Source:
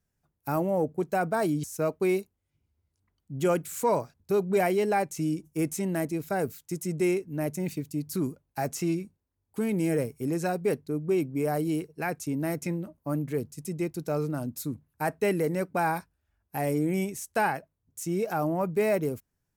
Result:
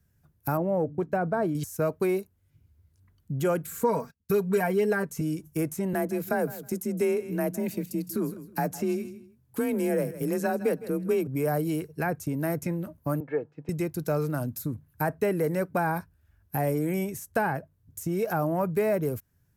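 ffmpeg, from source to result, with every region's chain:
-filter_complex "[0:a]asettb=1/sr,asplit=3[s0][s1][s2];[s0]atrim=end=0.574[s3];[s1]atrim=start=0.57:end=1.55,asetpts=PTS-STARTPTS,afade=t=in:d=0.004:c=qsin,afade=t=out:st=0.976:d=0.004:c=qsin,lowpass=f=1000:p=1,agate=range=0.0224:threshold=0.00501:ratio=3:release=100:detection=peak,bandreject=f=72.8:t=h:w=4,bandreject=f=145.6:t=h:w=4,bandreject=f=218.4:t=h:w=4,bandreject=f=291.2:t=h:w=4[s4];[s2]atrim=start=1.546[s5];[s3][s4]acrossfade=d=0.004:c1=hsin:c2=qsin[s6];[s6][s5]acrossfade=d=0.004:c1=qsin:c2=hsin,asettb=1/sr,asplit=3[s7][s8][s9];[s7]atrim=end=3.674[s10];[s8]atrim=start=3.67:end=5.21,asetpts=PTS-STARTPTS,afade=t=in:d=0.004:c=qsin,afade=t=out:st=1.536:d=0.004:c=qsin,agate=range=0.0631:threshold=0.00224:ratio=16:release=100:detection=peak,equalizer=f=680:w=5:g=-8,aecho=1:1:4.4:0.9,atrim=end_sample=67914[s11];[s9]atrim=start=5.206[s12];[s10][s11]acrossfade=d=0.004:c1=hsin:c2=qsin[s13];[s13][s12]acrossfade=d=0.004:c1=qsin:c2=hsin,asettb=1/sr,asplit=3[s14][s15][s16];[s14]atrim=end=5.934[s17];[s15]atrim=start=5.93:end=11.27,asetpts=PTS-STARTPTS,afade=t=in:d=0.004:c=qsin,afade=t=out:st=5.336:d=0.004:c=qsin,afreqshift=31,aecho=1:1:159|318:0.126|0.0214,atrim=end_sample=235494[s18];[s16]atrim=start=11.266[s19];[s17][s18]acrossfade=d=0.004:c1=hsin:c2=qsin[s20];[s20][s19]acrossfade=d=0.004:c1=qsin:c2=hsin,asettb=1/sr,asplit=3[s21][s22][s23];[s21]atrim=end=13.204[s24];[s22]atrim=start=13.2:end=13.69,asetpts=PTS-STARTPTS,afade=t=in:d=0.004:c=qsin,afade=t=out:st=0.486:d=0.004:c=qsin,highpass=f=220:w=0.5412,highpass=f=220:w=1.3066,equalizer=f=230:t=q:w=4:g=-7,equalizer=f=380:t=q:w=4:g=-10,equalizer=f=690:t=q:w=4:g=9,equalizer=f=1300:t=q:w=4:g=-4,equalizer=f=2000:t=q:w=4:g=-5,lowpass=f=2000:w=0.5412,lowpass=f=2000:w=1.3066,aecho=1:1:2.3:0.57,atrim=end_sample=21609[s25];[s23]atrim=start=13.686[s26];[s24][s25]acrossfade=d=0.004:c1=hsin:c2=qsin[s27];[s27][s26]acrossfade=d=0.004:c1=qsin:c2=hsin,equalizer=f=100:w=0.67:g=11,acrossover=split=490|1200[s28][s29][s30];[s28]acompressor=threshold=0.0158:ratio=4[s31];[s29]acompressor=threshold=0.0316:ratio=4[s32];[s30]acompressor=threshold=0.00398:ratio=4[s33];[s31][s32][s33]amix=inputs=3:normalize=0,equalizer=f=800:t=o:w=0.33:g=-3,equalizer=f=1600:t=o:w=0.33:g=5,equalizer=f=12500:t=o:w=0.33:g=9,volume=1.78"

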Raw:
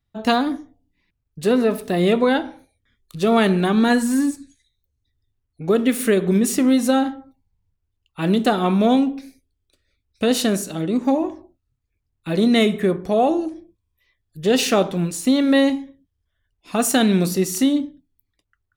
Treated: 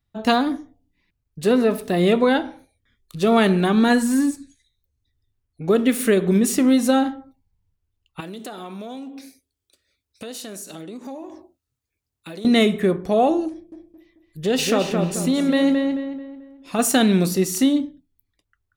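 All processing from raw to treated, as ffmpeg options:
-filter_complex "[0:a]asettb=1/sr,asplit=3[s0][s1][s2];[s0]atrim=end=8.204[s3];[s1]atrim=start=8.2:end=12.45,asetpts=PTS-STARTPTS,afade=t=in:d=0.004:c=qsin,afade=t=out:st=4.246:d=0.004:c=qsin,bass=f=250:g=-7,treble=f=4000:g=6,acompressor=threshold=0.0224:ratio=5:attack=3.2:release=140:knee=1:detection=peak,highpass=59[s4];[s2]atrim=start=12.446[s5];[s3][s4]acrossfade=d=0.004:c1=hsin:c2=qsin[s6];[s6][s5]acrossfade=d=0.004:c1=qsin:c2=hsin,asettb=1/sr,asplit=3[s7][s8][s9];[s7]atrim=end=13.504[s10];[s8]atrim=start=13.5:end=16.79,asetpts=PTS-STARTPTS,afade=t=in:d=0.004:c=qsin,afade=t=out:st=3.286:d=0.004:c=qsin,acompressor=threshold=0.0794:ratio=1.5:attack=3.2:release=140:knee=1:detection=peak,asplit=2[s11][s12];[s12]adelay=219,lowpass=f=2700:p=1,volume=0.631,asplit=2[s13][s14];[s14]adelay=219,lowpass=f=2700:p=1,volume=0.4,asplit=2[s15][s16];[s16]adelay=219,lowpass=f=2700:p=1,volume=0.4,asplit=2[s17][s18];[s18]adelay=219,lowpass=f=2700:p=1,volume=0.4,asplit=2[s19][s20];[s20]adelay=219,lowpass=f=2700:p=1,volume=0.4[s21];[s11][s13][s15][s17][s19][s21]amix=inputs=6:normalize=0,atrim=end_sample=145089[s22];[s9]atrim=start=16.786[s23];[s10][s22]acrossfade=d=0.004:c1=hsin:c2=qsin[s24];[s24][s23]acrossfade=d=0.004:c1=qsin:c2=hsin"

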